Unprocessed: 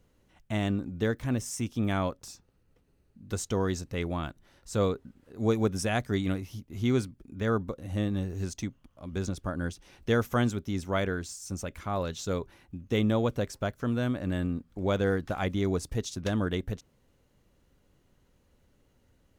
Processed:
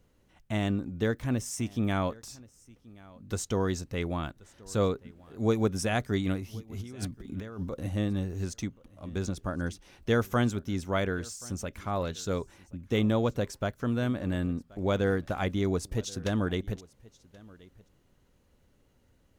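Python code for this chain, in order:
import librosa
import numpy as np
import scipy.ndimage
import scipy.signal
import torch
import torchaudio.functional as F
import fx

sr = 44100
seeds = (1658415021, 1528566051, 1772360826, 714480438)

p1 = fx.over_compress(x, sr, threshold_db=-37.0, ratio=-1.0, at=(6.79, 7.88), fade=0.02)
y = p1 + fx.echo_single(p1, sr, ms=1079, db=-23.0, dry=0)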